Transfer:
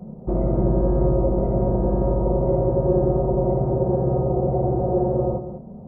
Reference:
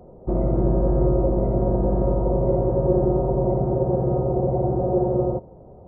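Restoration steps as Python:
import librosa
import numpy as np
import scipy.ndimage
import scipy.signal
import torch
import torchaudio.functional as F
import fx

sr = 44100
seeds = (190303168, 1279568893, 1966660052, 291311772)

y = fx.noise_reduce(x, sr, print_start_s=5.36, print_end_s=5.86, reduce_db=11.0)
y = fx.fix_echo_inverse(y, sr, delay_ms=195, level_db=-11.0)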